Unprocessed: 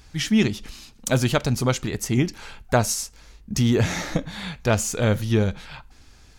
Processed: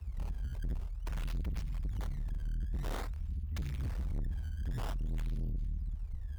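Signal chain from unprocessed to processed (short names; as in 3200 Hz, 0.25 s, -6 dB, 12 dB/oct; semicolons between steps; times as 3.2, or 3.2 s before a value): inverse Chebyshev band-stop 180–5600 Hz, stop band 60 dB; decimation with a swept rate 16×, swing 160% 0.5 Hz; harmonic-percussive split percussive -12 dB; frequency shift +23 Hz; tube stage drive 48 dB, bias 0.35; gain +16 dB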